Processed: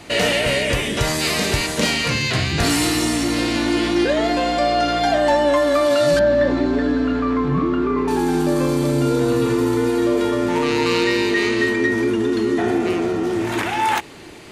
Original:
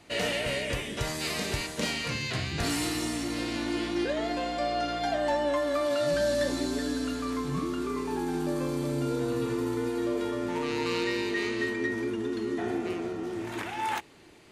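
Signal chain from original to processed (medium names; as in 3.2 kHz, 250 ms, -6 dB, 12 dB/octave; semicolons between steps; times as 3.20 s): 6.19–8.08 s: low-pass 2 kHz 12 dB/octave; in parallel at +1 dB: peak limiter -31 dBFS, peak gain reduction 10.5 dB; on the sum: trim +8.5 dB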